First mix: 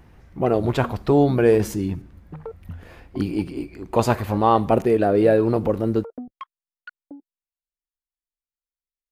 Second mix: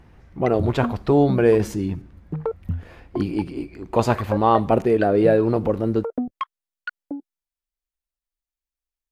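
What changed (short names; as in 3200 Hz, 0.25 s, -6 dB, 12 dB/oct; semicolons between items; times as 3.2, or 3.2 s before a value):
speech: add high shelf 10000 Hz -10 dB; background +9.5 dB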